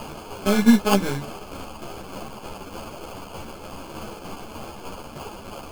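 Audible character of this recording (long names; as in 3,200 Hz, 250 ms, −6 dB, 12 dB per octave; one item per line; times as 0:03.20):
a quantiser's noise floor 6 bits, dither triangular
tremolo saw down 3.3 Hz, depth 50%
aliases and images of a low sample rate 1,900 Hz, jitter 0%
a shimmering, thickened sound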